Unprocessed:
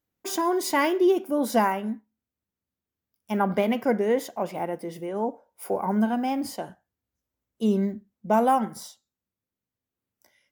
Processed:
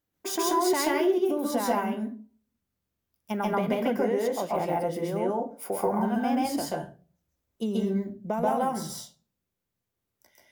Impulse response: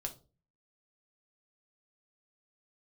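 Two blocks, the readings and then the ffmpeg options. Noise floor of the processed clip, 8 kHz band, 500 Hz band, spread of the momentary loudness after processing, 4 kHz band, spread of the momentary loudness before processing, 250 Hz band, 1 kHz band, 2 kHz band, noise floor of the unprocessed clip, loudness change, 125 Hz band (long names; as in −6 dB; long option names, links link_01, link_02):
−84 dBFS, +2.5 dB, −1.0 dB, 11 LU, +1.0 dB, 13 LU, −2.0 dB, −2.0 dB, −3.0 dB, below −85 dBFS, −2.0 dB, −1.0 dB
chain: -filter_complex "[0:a]acompressor=threshold=-27dB:ratio=6,asplit=2[link_01][link_02];[1:a]atrim=start_sample=2205,adelay=134[link_03];[link_02][link_03]afir=irnorm=-1:irlink=0,volume=3.5dB[link_04];[link_01][link_04]amix=inputs=2:normalize=0"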